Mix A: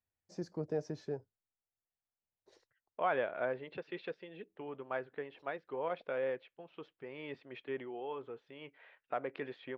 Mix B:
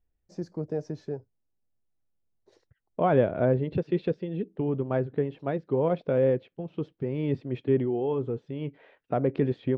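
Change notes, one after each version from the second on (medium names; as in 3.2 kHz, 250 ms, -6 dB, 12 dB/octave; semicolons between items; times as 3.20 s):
second voice: remove band-pass filter 1.8 kHz, Q 0.72; master: add bass shelf 480 Hz +8.5 dB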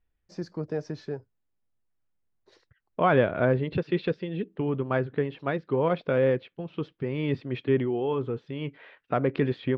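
master: add high-order bell 2.3 kHz +8.5 dB 2.6 oct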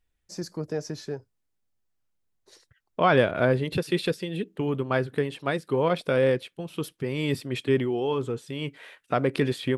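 second voice: remove distance through air 150 m; master: remove distance through air 230 m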